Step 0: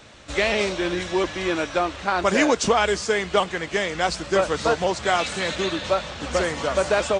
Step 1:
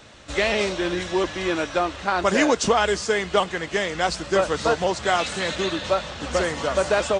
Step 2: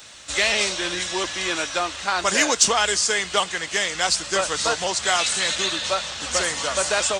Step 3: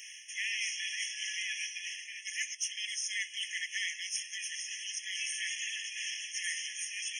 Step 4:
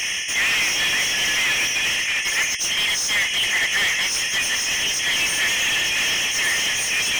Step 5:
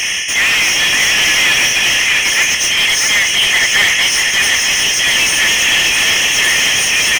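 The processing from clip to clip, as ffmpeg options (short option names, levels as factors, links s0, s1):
-af "bandreject=f=2300:w=25"
-filter_complex "[0:a]acrossover=split=700[s0][s1];[s1]acontrast=64[s2];[s0][s2]amix=inputs=2:normalize=0,crystalizer=i=4:c=0,volume=0.422"
-af "areverse,acompressor=threshold=0.0355:ratio=16,areverse,afftfilt=real='re*eq(mod(floor(b*sr/1024/1700),2),1)':imag='im*eq(mod(floor(b*sr/1024/1700),2),1)':win_size=1024:overlap=0.75"
-filter_complex "[0:a]asplit=2[s0][s1];[s1]highpass=f=720:p=1,volume=25.1,asoftclip=type=tanh:threshold=0.0944[s2];[s0][s2]amix=inputs=2:normalize=0,lowpass=f=3800:p=1,volume=0.501,volume=2.66"
-af "aecho=1:1:648:0.596,volume=2.37"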